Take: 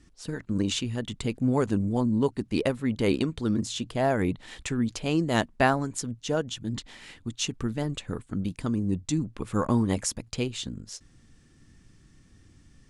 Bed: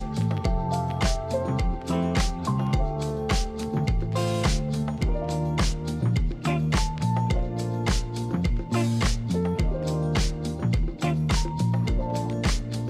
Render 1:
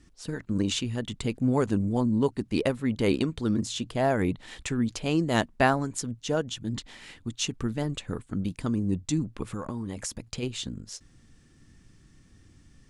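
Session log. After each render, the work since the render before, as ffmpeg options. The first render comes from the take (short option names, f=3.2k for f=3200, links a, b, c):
-filter_complex "[0:a]asplit=3[a][b][c];[a]afade=t=out:st=9.52:d=0.02[d];[b]acompressor=threshold=-29dB:ratio=12:attack=3.2:release=140:knee=1:detection=peak,afade=t=in:st=9.52:d=0.02,afade=t=out:st=10.42:d=0.02[e];[c]afade=t=in:st=10.42:d=0.02[f];[d][e][f]amix=inputs=3:normalize=0"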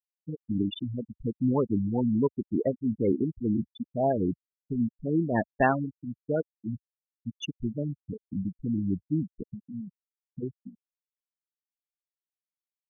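-af "afftfilt=real='re*gte(hypot(re,im),0.158)':imag='im*gte(hypot(re,im),0.158)':win_size=1024:overlap=0.75,equalizer=f=70:t=o:w=0.84:g=-8.5"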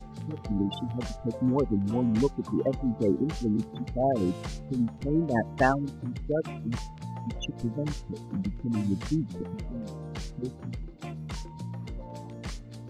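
-filter_complex "[1:a]volume=-13.5dB[a];[0:a][a]amix=inputs=2:normalize=0"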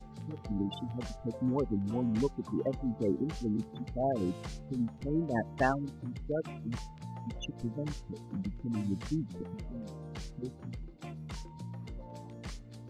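-af "volume=-5.5dB"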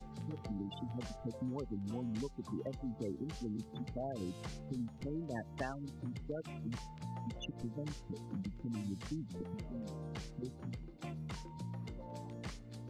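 -filter_complex "[0:a]acrossover=split=120|2800[a][b][c];[a]acompressor=threshold=-49dB:ratio=4[d];[b]acompressor=threshold=-40dB:ratio=4[e];[c]acompressor=threshold=-54dB:ratio=4[f];[d][e][f]amix=inputs=3:normalize=0"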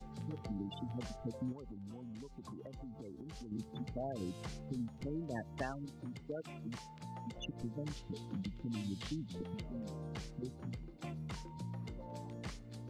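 -filter_complex "[0:a]asettb=1/sr,asplit=3[a][b][c];[a]atrim=end=1.524[d];[b]atrim=start=1.52:end=3.52,asetpts=PTS-STARTPTS,afade=t=in:d=0.004:c=qsin,afade=t=out:st=1.996:d=0.004:c=qsin,acompressor=threshold=-44dB:ratio=12:attack=3.2:release=140:knee=1:detection=peak[e];[c]atrim=start=3.516[f];[d][e]acrossfade=d=0.004:c1=hsin:c2=qsin[g];[g][f]acrossfade=d=0.004:c1=qsin:c2=hsin,asettb=1/sr,asplit=3[h][i][j];[h]atrim=end=5.854[k];[i]atrim=start=5.85:end=7.38,asetpts=PTS-STARTPTS,afade=t=in:d=0.004:c=qsin,afade=t=out:st=1.526:d=0.004:c=qsin,highpass=f=190:p=1[l];[j]atrim=start=7.376[m];[k][l]acrossfade=d=0.004:c1=hsin:c2=qsin[n];[n][m]acrossfade=d=0.004:c1=qsin:c2=hsin,asettb=1/sr,asplit=3[o][p][q];[o]atrim=end=7.964[r];[p]atrim=start=7.96:end=9.62,asetpts=PTS-STARTPTS,afade=t=in:d=0.004:c=qsin,afade=t=out:st=1.656:d=0.004:c=qsin,equalizer=f=3.4k:w=1.5:g=9.5[s];[q]atrim=start=9.616[t];[r][s]acrossfade=d=0.004:c1=hsin:c2=qsin[u];[u][t]acrossfade=d=0.004:c1=qsin:c2=hsin"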